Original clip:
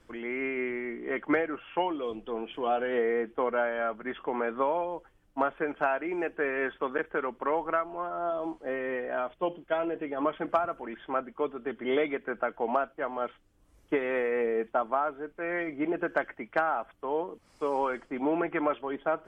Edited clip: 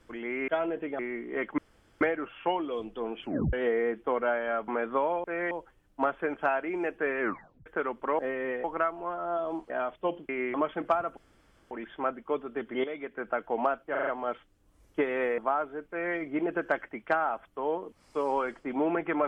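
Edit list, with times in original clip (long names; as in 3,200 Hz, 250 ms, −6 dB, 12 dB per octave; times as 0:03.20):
0:00.48–0:00.73: swap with 0:09.67–0:10.18
0:01.32: splice in room tone 0.43 s
0:02.54: tape stop 0.30 s
0:03.99–0:04.33: remove
0:06.58: tape stop 0.46 s
0:08.63–0:09.08: move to 0:07.57
0:10.81: splice in room tone 0.54 s
0:11.94–0:12.48: fade in, from −13.5 dB
0:13.01: stutter 0.04 s, 5 plays
0:14.32–0:14.84: remove
0:15.35–0:15.62: duplicate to 0:04.89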